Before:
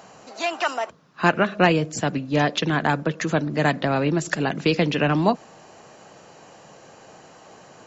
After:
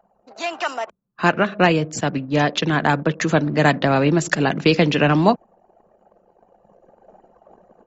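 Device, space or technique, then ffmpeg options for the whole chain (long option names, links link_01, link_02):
voice memo with heavy noise removal: -af "anlmdn=0.631,dynaudnorm=framelen=650:gausssize=3:maxgain=11dB,volume=-1dB"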